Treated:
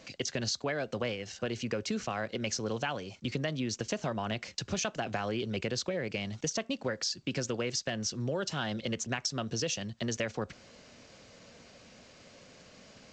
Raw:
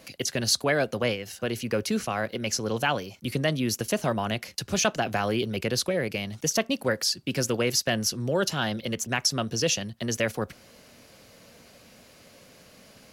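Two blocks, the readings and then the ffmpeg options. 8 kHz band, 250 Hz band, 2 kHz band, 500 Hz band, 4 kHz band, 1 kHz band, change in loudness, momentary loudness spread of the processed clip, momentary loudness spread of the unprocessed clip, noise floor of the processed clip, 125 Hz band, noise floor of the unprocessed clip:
-8.0 dB, -6.0 dB, -7.5 dB, -7.0 dB, -7.5 dB, -7.5 dB, -7.0 dB, 21 LU, 7 LU, -57 dBFS, -6.0 dB, -54 dBFS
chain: -af "acompressor=threshold=-27dB:ratio=8,volume=-2dB" -ar 16000 -c:a g722

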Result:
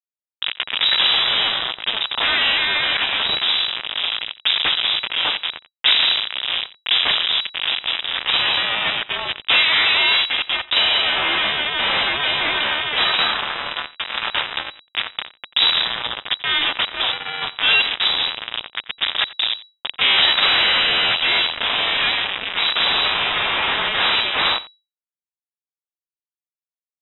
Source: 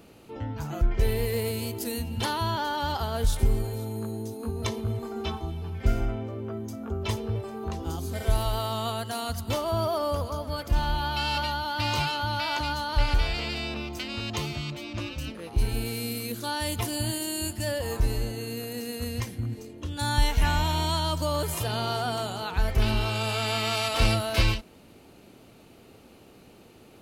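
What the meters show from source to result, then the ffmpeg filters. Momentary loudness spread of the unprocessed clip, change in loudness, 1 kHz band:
9 LU, +11.5 dB, +5.5 dB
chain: -filter_complex "[0:a]highpass=f=45:p=1,aemphasis=mode=reproduction:type=50fm,bandreject=f=50:t=h:w=6,bandreject=f=100:t=h:w=6,bandreject=f=150:t=h:w=6,bandreject=f=200:t=h:w=6,bandreject=f=250:t=h:w=6,bandreject=f=300:t=h:w=6,bandreject=f=350:t=h:w=6,aecho=1:1:5.3:0.3,acontrast=32,aresample=16000,aeval=exprs='abs(val(0))':c=same,aresample=44100,acrusher=bits=3:mix=0:aa=0.000001,aeval=exprs='0.447*sin(PI/2*3.98*val(0)/0.447)':c=same,asplit=2[a][b];[b]highpass=f=720:p=1,volume=16dB,asoftclip=type=tanh:threshold=-7.5dB[c];[a][c]amix=inputs=2:normalize=0,lowpass=f=2.8k:p=1,volume=-6dB,asplit=2[d][e];[e]aecho=0:1:88:0.112[f];[d][f]amix=inputs=2:normalize=0,lowpass=f=3.3k:t=q:w=0.5098,lowpass=f=3.3k:t=q:w=0.6013,lowpass=f=3.3k:t=q:w=0.9,lowpass=f=3.3k:t=q:w=2.563,afreqshift=-3900,adynamicequalizer=threshold=0.0447:dfrequency=1500:dqfactor=0.7:tfrequency=1500:tqfactor=0.7:attack=5:release=100:ratio=0.375:range=3:mode=cutabove:tftype=highshelf"

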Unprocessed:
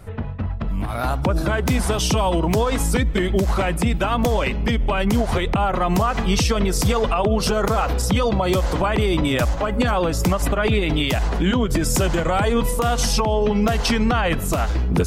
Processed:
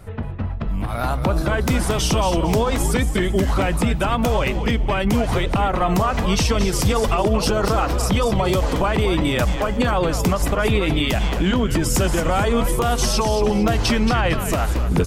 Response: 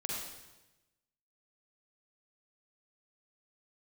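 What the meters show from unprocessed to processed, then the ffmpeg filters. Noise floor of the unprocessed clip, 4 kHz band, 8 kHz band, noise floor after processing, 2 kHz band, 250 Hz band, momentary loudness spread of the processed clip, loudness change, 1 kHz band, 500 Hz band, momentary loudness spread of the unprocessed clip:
-25 dBFS, +0.5 dB, +0.5 dB, -25 dBFS, +0.5 dB, +0.5 dB, 3 LU, +0.5 dB, +0.5 dB, +0.5 dB, 2 LU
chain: -filter_complex "[0:a]asplit=5[a][b][c][d][e];[b]adelay=227,afreqshift=-100,volume=-9dB[f];[c]adelay=454,afreqshift=-200,volume=-18.4dB[g];[d]adelay=681,afreqshift=-300,volume=-27.7dB[h];[e]adelay=908,afreqshift=-400,volume=-37.1dB[i];[a][f][g][h][i]amix=inputs=5:normalize=0"

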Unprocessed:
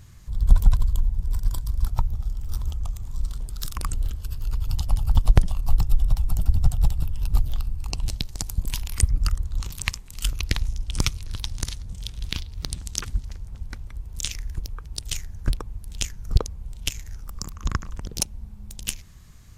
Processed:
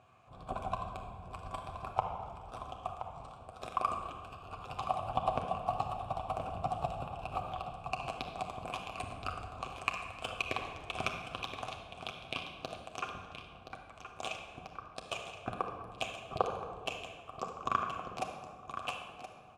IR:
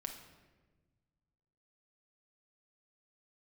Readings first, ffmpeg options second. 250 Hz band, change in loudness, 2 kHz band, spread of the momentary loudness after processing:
-9.5 dB, -11.5 dB, -3.0 dB, 12 LU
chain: -filter_complex "[0:a]highpass=f=110:p=1,agate=range=-8dB:threshold=-35dB:ratio=16:detection=peak,highshelf=f=7k:t=q:w=1.5:g=10,asplit=2[a][b];[b]acompressor=threshold=-37dB:ratio=6,volume=2dB[c];[a][c]amix=inputs=2:normalize=0,aeval=exprs='2.24*(cos(1*acos(clip(val(0)/2.24,-1,1)))-cos(1*PI/2))+0.282*(cos(8*acos(clip(val(0)/2.24,-1,1)))-cos(8*PI/2))':c=same,asoftclip=type=hard:threshold=-11dB,asplit=3[d][e][f];[d]bandpass=f=730:t=q:w=8,volume=0dB[g];[e]bandpass=f=1.09k:t=q:w=8,volume=-6dB[h];[f]bandpass=f=2.44k:t=q:w=8,volume=-9dB[i];[g][h][i]amix=inputs=3:normalize=0,adynamicsmooth=sensitivity=8:basefreq=4.3k,aecho=1:1:1023:0.299[j];[1:a]atrim=start_sample=2205,asetrate=29547,aresample=44100[k];[j][k]afir=irnorm=-1:irlink=0,volume=13dB"

